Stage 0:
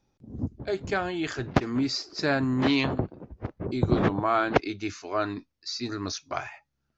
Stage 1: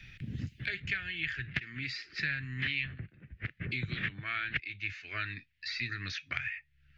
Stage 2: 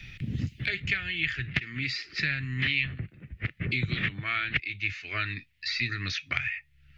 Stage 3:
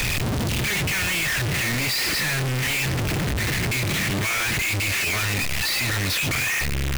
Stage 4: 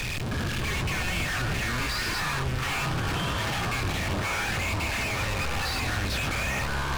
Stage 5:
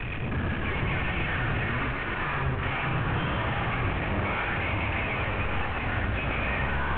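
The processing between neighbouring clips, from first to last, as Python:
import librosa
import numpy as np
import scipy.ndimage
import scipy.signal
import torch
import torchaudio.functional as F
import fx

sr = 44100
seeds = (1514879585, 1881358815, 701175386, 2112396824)

y1 = fx.curve_eq(x, sr, hz=(140.0, 260.0, 950.0, 1800.0, 2700.0, 6000.0), db=(0, -15, -26, 13, 12, -11))
y1 = fx.band_squash(y1, sr, depth_pct=100)
y1 = y1 * 10.0 ** (-9.0 / 20.0)
y2 = fx.peak_eq(y1, sr, hz=1600.0, db=-7.0, octaves=0.27)
y2 = y2 * 10.0 ** (7.0 / 20.0)
y3 = np.sign(y2) * np.sqrt(np.mean(np.square(y2)))
y3 = y3 * 10.0 ** (8.5 / 20.0)
y4 = fx.high_shelf(y3, sr, hz=10000.0, db=-11.0)
y4 = fx.echo_pitch(y4, sr, ms=313, semitones=-7, count=3, db_per_echo=-3.0)
y4 = fx.notch(y4, sr, hz=2000.0, q=19.0)
y4 = y4 * 10.0 ** (-6.5 / 20.0)
y5 = fx.cvsd(y4, sr, bps=16000)
y5 = y5 + 10.0 ** (-4.0 / 20.0) * np.pad(y5, (int(120 * sr / 1000.0), 0))[:len(y5)]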